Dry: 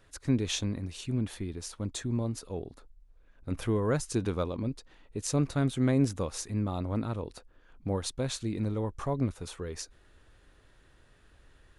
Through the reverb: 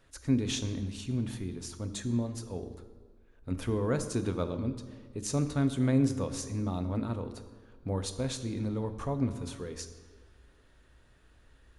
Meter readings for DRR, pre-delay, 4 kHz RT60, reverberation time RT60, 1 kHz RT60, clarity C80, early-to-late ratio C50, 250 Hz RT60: 8.5 dB, 3 ms, 1.1 s, 1.6 s, 1.5 s, 12.5 dB, 11.5 dB, 1.6 s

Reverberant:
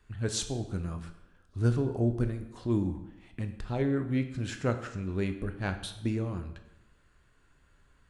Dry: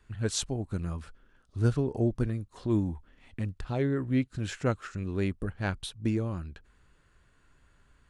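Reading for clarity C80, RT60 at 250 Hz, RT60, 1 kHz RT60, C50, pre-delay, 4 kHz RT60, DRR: 13.0 dB, 0.95 s, 0.95 s, 0.90 s, 10.5 dB, 10 ms, 0.75 s, 7.0 dB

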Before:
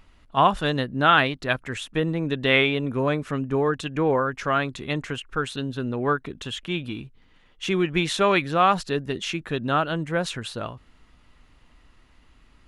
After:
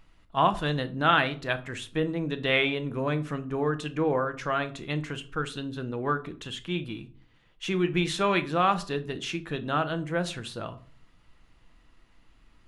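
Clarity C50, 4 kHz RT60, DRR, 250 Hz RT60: 17.0 dB, 0.25 s, 9.0 dB, 0.60 s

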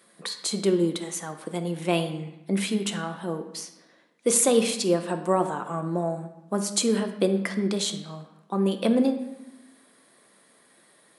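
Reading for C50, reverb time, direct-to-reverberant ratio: 9.5 dB, 0.90 s, 6.0 dB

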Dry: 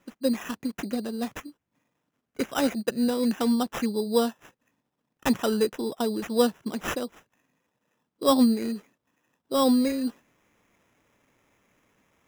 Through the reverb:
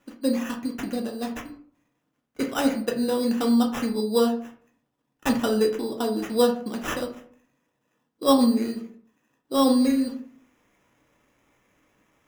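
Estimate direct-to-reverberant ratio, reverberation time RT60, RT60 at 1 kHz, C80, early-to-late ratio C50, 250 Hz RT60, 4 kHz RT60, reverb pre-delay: 1.5 dB, 0.55 s, 0.50 s, 14.0 dB, 10.5 dB, 0.60 s, 0.30 s, 3 ms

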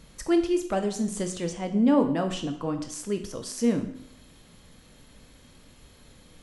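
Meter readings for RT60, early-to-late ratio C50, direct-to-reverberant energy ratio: 0.70 s, 10.0 dB, 5.5 dB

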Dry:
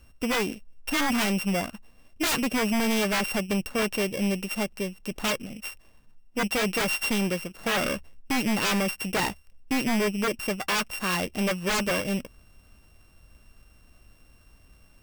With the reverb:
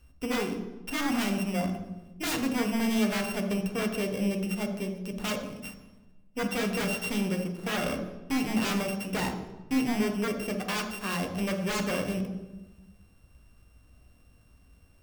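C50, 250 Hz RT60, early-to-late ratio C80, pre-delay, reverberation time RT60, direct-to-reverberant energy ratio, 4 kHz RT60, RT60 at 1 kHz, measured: 6.5 dB, 1.5 s, 9.0 dB, 3 ms, 1.1 s, 4.0 dB, 0.75 s, 1.0 s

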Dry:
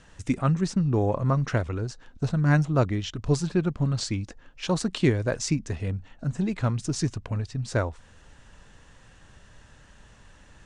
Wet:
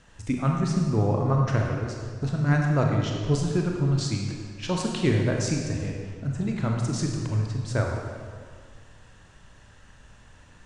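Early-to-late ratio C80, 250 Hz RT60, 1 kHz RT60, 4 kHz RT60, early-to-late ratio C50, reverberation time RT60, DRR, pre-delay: 3.0 dB, 1.9 s, 1.9 s, 1.4 s, 1.5 dB, 1.9 s, 0.0 dB, 26 ms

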